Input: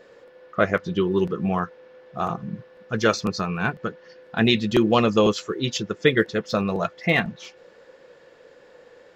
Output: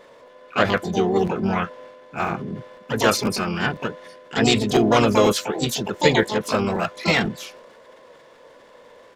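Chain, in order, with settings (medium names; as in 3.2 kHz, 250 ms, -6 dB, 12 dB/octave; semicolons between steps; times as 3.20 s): harmony voices -12 st -18 dB, +3 st -5 dB, +12 st -6 dB; transient shaper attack +1 dB, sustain +6 dB; trim -1 dB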